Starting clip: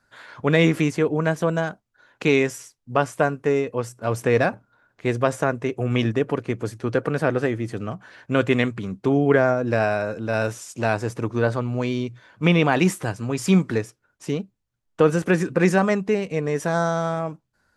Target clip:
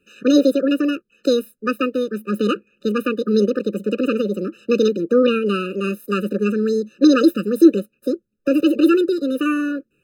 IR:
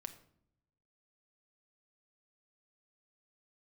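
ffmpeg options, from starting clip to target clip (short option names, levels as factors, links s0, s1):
-af "asetrate=78057,aresample=44100,equalizer=f=330:t=o:w=2.8:g=10.5,afftfilt=real='re*eq(mod(floor(b*sr/1024/600),2),0)':imag='im*eq(mod(floor(b*sr/1024/600),2),0)':win_size=1024:overlap=0.75,volume=0.794"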